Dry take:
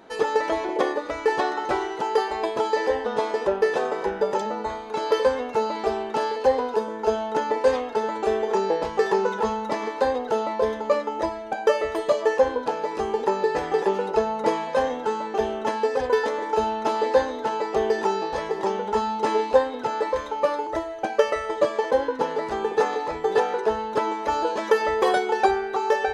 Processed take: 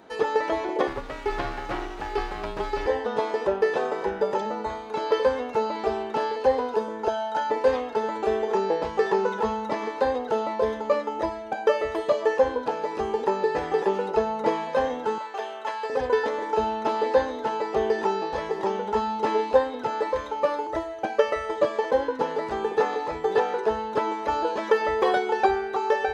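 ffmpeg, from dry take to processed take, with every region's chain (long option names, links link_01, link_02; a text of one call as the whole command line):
ffmpeg -i in.wav -filter_complex "[0:a]asettb=1/sr,asplit=3[link_01][link_02][link_03];[link_01]atrim=end=0.874[link_04];[link_02]atrim=start=0.87:end=2.86,asetpts=PTS-STARTPTS,afade=type=in:duration=0.004:curve=qsin,afade=type=out:start_time=1.986:duration=0.004:curve=qsin,aeval=exprs='max(val(0),0)':channel_layout=same,afreqshift=-32[link_05];[link_03]atrim=start=2.856[link_06];[link_04][link_05]acrossfade=duration=0.004:curve1=hsin:curve2=qsin[link_07];[link_07][link_06]acrossfade=duration=0.004:curve1=qsin:curve2=hsin,asettb=1/sr,asplit=3[link_08][link_09][link_10];[link_08]atrim=end=7.084[link_11];[link_09]atrim=start=7.08:end=7.5,asetpts=PTS-STARTPTS,afade=type=in:duration=0.004:curve=qsin,afade=type=out:start_time=0.416:duration=0.004:curve=qsin,highpass=frequency=640:poles=1,equalizer=frequency=2300:width=4.9:gain=-7,aecho=1:1:1.3:0.78,atrim=end_sample=18522[link_12];[link_10]atrim=start=7.496[link_13];[link_11][link_12]acrossfade=duration=0.004:curve1=hsin:curve2=qsin[link_14];[link_14][link_13]acrossfade=duration=0.004:curve1=qsin:curve2=hsin,asettb=1/sr,asplit=3[link_15][link_16][link_17];[link_15]atrim=end=15.184[link_18];[link_16]atrim=start=15.18:end=15.9,asetpts=PTS-STARTPTS,afade=type=in:duration=0.004:curve=qsin,afade=type=out:start_time=0.716:duration=0.004:curve=qsin,highpass=770,bandreject=frequency=5800:width=14[link_19];[link_17]atrim=start=15.896[link_20];[link_18][link_19]acrossfade=duration=0.004:curve1=hsin:curve2=qsin[link_21];[link_21][link_20]acrossfade=duration=0.004:curve1=qsin:curve2=hsin,acrossover=split=4800[link_22][link_23];[link_23]acompressor=threshold=-54dB:ratio=4:attack=1:release=60[link_24];[link_22][link_24]amix=inputs=2:normalize=0,highpass=47,lowshelf=frequency=84:gain=5.5,volume=-1.5dB" out.wav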